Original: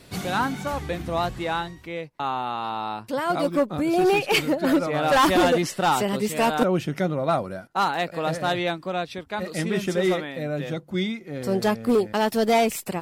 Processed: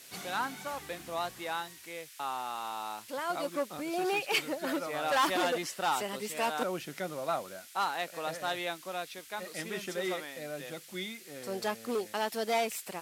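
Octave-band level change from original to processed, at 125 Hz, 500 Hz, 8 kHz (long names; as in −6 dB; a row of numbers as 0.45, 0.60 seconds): −19.0, −11.5, −5.0 decibels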